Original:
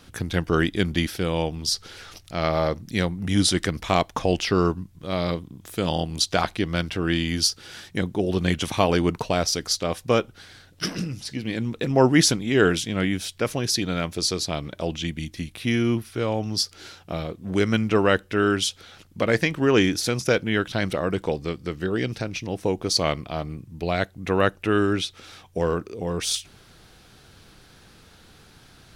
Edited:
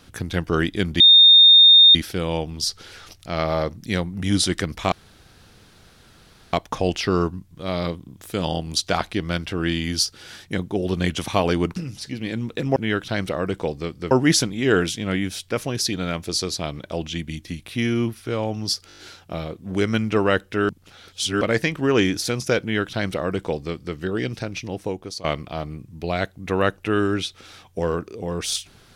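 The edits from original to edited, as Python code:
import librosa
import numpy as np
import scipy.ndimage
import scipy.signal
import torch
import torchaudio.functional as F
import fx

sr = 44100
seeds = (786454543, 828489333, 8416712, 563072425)

y = fx.edit(x, sr, fx.insert_tone(at_s=1.0, length_s=0.95, hz=3660.0, db=-7.0),
    fx.insert_room_tone(at_s=3.97, length_s=1.61),
    fx.cut(start_s=9.2, length_s=1.8),
    fx.stutter(start_s=16.77, slice_s=0.02, count=6),
    fx.reverse_span(start_s=18.48, length_s=0.72),
    fx.duplicate(start_s=20.4, length_s=1.35, to_s=12.0),
    fx.fade_out_to(start_s=22.47, length_s=0.56, floor_db=-17.0), tone=tone)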